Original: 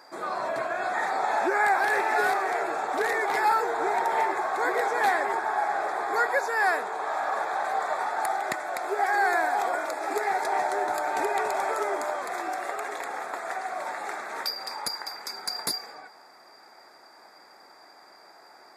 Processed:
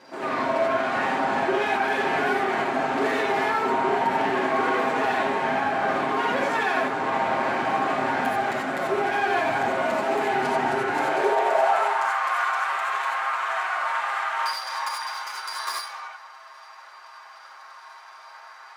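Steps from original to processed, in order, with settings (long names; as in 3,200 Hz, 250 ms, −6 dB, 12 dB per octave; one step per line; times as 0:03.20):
lower of the sound and its delayed copy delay 7.5 ms
low-pass filter 2,800 Hz 6 dB per octave
brickwall limiter −24 dBFS, peak gain reduction 10 dB
reverb whose tail is shaped and stops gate 110 ms rising, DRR −2 dB
high-pass filter sweep 240 Hz → 1,100 Hz, 0:10.76–0:12.12
level +3.5 dB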